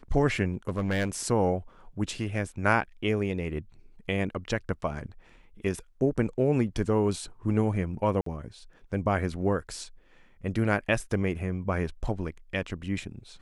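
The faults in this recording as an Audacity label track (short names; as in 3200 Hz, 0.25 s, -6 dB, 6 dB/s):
0.530000	1.280000	clipped -22.5 dBFS
8.210000	8.260000	gap 53 ms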